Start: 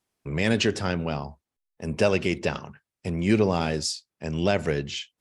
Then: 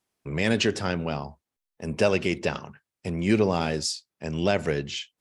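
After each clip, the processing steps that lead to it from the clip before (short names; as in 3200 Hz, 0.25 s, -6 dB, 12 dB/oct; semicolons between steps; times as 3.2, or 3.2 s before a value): low shelf 100 Hz -4.5 dB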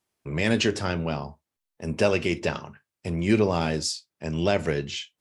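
non-linear reverb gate 80 ms falling, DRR 11 dB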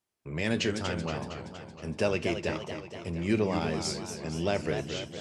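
warbling echo 0.233 s, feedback 62%, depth 198 cents, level -8 dB; gain -6 dB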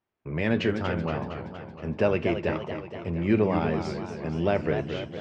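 LPF 2200 Hz 12 dB/oct; gain +4.5 dB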